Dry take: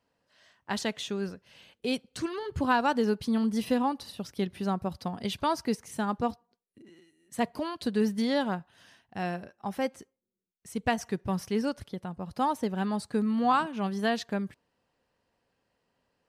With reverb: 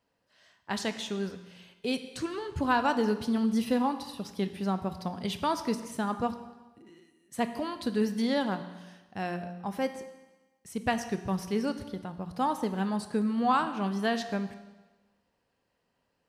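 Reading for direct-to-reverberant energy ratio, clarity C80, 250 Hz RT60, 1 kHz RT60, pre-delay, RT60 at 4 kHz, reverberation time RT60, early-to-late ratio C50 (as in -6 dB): 9.0 dB, 12.5 dB, 1.1 s, 1.2 s, 17 ms, 1.2 s, 1.2 s, 11.0 dB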